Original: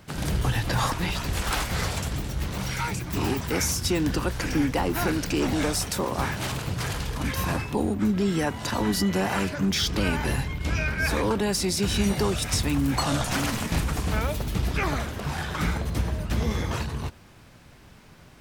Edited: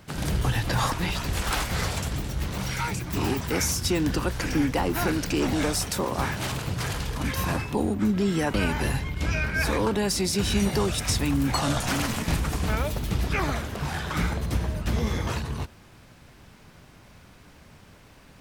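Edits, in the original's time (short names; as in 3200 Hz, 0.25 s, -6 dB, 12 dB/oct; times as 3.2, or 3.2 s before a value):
8.54–9.98 cut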